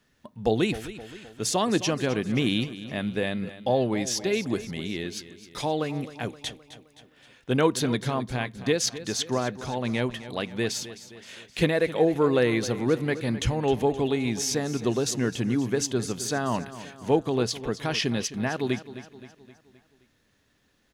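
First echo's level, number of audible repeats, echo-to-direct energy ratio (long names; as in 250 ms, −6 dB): −14.5 dB, 4, −13.0 dB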